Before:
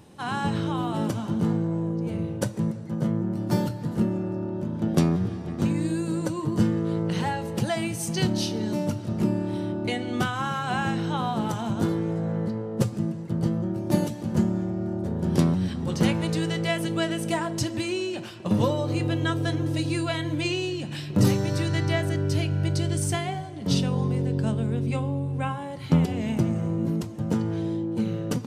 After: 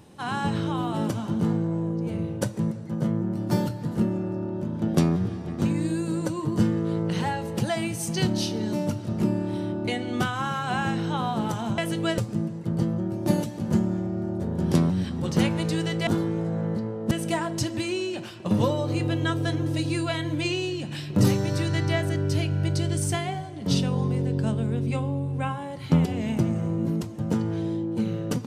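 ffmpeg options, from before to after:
-filter_complex "[0:a]asplit=5[a][b][c][d][e];[a]atrim=end=11.782[f];[b]atrim=start=16.708:end=17.112[g];[c]atrim=start=12.818:end=16.712[h];[d]atrim=start=11.778:end=12.822[i];[e]atrim=start=17.108[j];[f][g]acrossfade=d=0.004:c1=hsin:c2=hsin[k];[k][h]acrossfade=d=0.004:c1=hsin:c2=hsin[l];[l][i]acrossfade=d=0.004:c1=hsin:c2=hsin[m];[m][j]acrossfade=d=0.004:c1=hsin:c2=hsin"

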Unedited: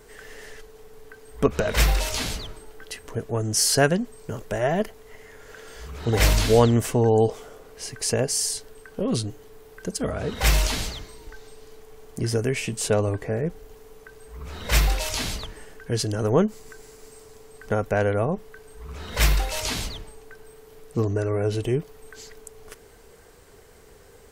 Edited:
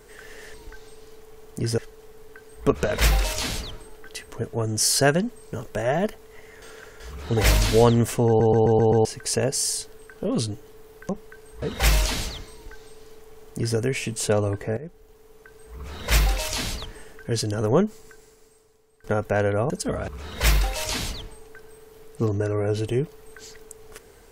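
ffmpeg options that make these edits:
-filter_complex "[0:a]asplit=17[a][b][c][d][e][f][g][h][i][j][k][l][m][n][o][p][q];[a]atrim=end=0.542[r];[b]atrim=start=11.138:end=12.382[s];[c]atrim=start=0.538:end=5.382[t];[d]atrim=start=5.378:end=5.762,asetpts=PTS-STARTPTS,areverse[u];[e]atrim=start=5.758:end=7.162[v];[f]atrim=start=7.028:end=7.162[w];[g]atrim=start=7.028:end=7.162[x];[h]atrim=start=7.028:end=7.162[y];[i]atrim=start=7.028:end=7.162[z];[j]atrim=start=7.028:end=7.162[aa];[k]atrim=start=7.808:end=9.852[ab];[l]atrim=start=18.308:end=18.842[ac];[m]atrim=start=10.228:end=13.38,asetpts=PTS-STARTPTS,afade=t=out:st=3.148:d=0.004:c=hsin:silence=0.223872[ad];[n]atrim=start=13.38:end=17.65,asetpts=PTS-STARTPTS,afade=t=in:d=1.05:silence=0.223872,afade=t=out:st=3.04:d=1.23:c=qua:silence=0.158489[ae];[o]atrim=start=17.65:end=18.312,asetpts=PTS-STARTPTS,afade=t=in:d=0.004:c=hsin:silence=0.158489[af];[p]atrim=start=9.848:end=10.232[ag];[q]atrim=start=18.838[ah];[r][s]acrossfade=d=0.004:c1=hsin:c2=hsin[ai];[ai][t]acrossfade=d=0.004:c1=hsin:c2=hsin[aj];[aj][u]acrossfade=d=0.004:c1=hsin:c2=hsin[ak];[ak][v]acrossfade=d=0.004:c1=hsin:c2=hsin[al];[al][w]acrossfade=d=0.004:c1=hsin:c2=hsin[am];[am][x]acrossfade=d=0.004:c1=hsin:c2=hsin[an];[an][y]acrossfade=d=0.004:c1=hsin:c2=hsin[ao];[ao][z]acrossfade=d=0.004:c1=hsin:c2=hsin[ap];[ap][aa]acrossfade=d=0.004:c1=hsin:c2=hsin[aq];[aq][ab]acrossfade=d=0.004:c1=hsin:c2=hsin[ar];[ar][ac]acrossfade=d=0.004:c1=hsin:c2=hsin[as];[ad][ae][af]concat=n=3:v=0:a=1[at];[as][at]acrossfade=d=0.004:c1=hsin:c2=hsin[au];[au][ag]acrossfade=d=0.004:c1=hsin:c2=hsin[av];[av][ah]acrossfade=d=0.004:c1=hsin:c2=hsin"

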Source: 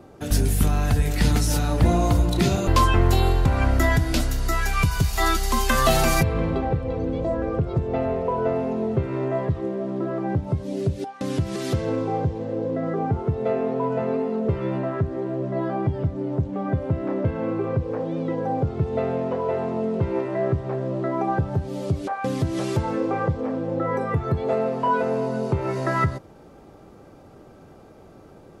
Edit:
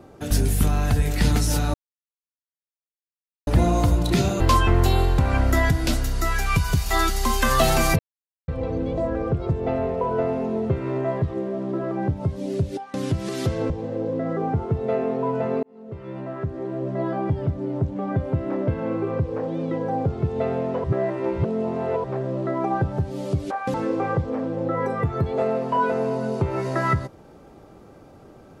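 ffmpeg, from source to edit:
-filter_complex "[0:a]asplit=9[a][b][c][d][e][f][g][h][i];[a]atrim=end=1.74,asetpts=PTS-STARTPTS,afade=t=out:st=1.736:d=0.004:c=hsin,apad=pad_dur=1.73[j];[b]atrim=start=1.74:end=6.26,asetpts=PTS-STARTPTS,afade=t=in:d=0.004:c=hsin,afade=t=out:st=4.516:d=0.004:c=hsin[k];[c]atrim=start=6.26:end=6.75,asetpts=PTS-STARTPTS,volume=0[l];[d]atrim=start=6.75:end=11.972,asetpts=PTS-STARTPTS,afade=t=in:d=0.004:c=hsin[m];[e]atrim=start=12.268:end=14.2,asetpts=PTS-STARTPTS,afade=t=out:st=1.928:d=0.004:c=hsin[n];[f]atrim=start=14.2:end=19.412,asetpts=PTS-STARTPTS,afade=t=in:d=1.31[o];[g]atrim=start=19.408:end=20.612,asetpts=PTS-STARTPTS,areverse[p];[h]atrim=start=20.608:end=22.312[q];[i]atrim=start=22.848[r];[j][k][l][m]concat=n=4:v=0:a=1[s];[n][o]concat=n=2:v=0:a=1[t];[s][t]acrossfade=d=0.004:c1=hsin:c2=hsin[u];[u][p]acrossfade=d=0.004:c1=hsin:c2=hsin[v];[v][q]acrossfade=d=0.004:c1=hsin:c2=hsin[w];[w][r]acrossfade=d=0.004:c1=hsin:c2=hsin"

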